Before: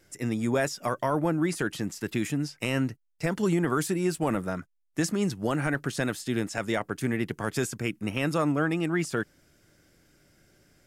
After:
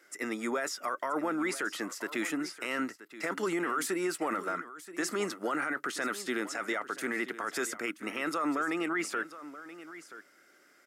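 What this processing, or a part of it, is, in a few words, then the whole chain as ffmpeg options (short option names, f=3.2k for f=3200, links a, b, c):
laptop speaker: -af "highpass=f=280:w=0.5412,highpass=f=280:w=1.3066,equalizer=f=1.3k:t=o:w=0.51:g=12,equalizer=f=2k:t=o:w=0.24:g=7.5,alimiter=limit=-21.5dB:level=0:latency=1:release=18,aecho=1:1:978:0.178,volume=-1.5dB"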